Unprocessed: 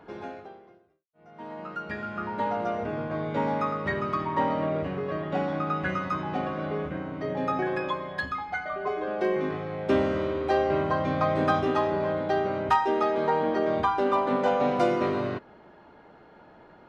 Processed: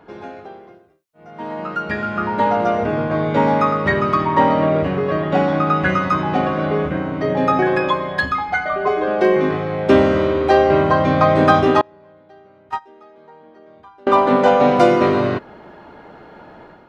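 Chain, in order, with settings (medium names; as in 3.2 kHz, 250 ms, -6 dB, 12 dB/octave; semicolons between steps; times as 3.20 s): level rider gain up to 8 dB; 11.81–14.07 s: gate -10 dBFS, range -31 dB; trim +3.5 dB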